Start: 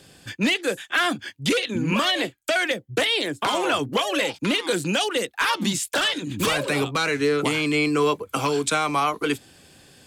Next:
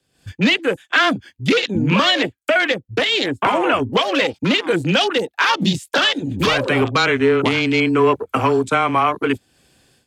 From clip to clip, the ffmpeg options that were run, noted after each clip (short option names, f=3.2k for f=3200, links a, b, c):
-af "afwtdn=0.0316,afreqshift=-14,dynaudnorm=f=120:g=3:m=15dB,volume=-3.5dB"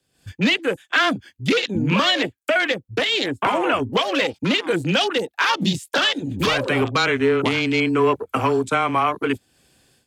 -af "highshelf=f=8.6k:g=4.5,volume=-3dB"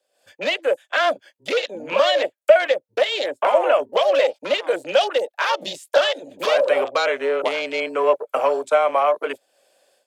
-af "highpass=f=580:t=q:w=7.1,volume=-4.5dB"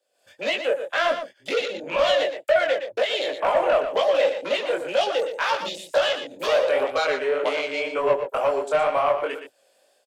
-af "asoftclip=type=tanh:threshold=-11dB,flanger=delay=17.5:depth=6.9:speed=2,aecho=1:1:118:0.355,volume=1dB"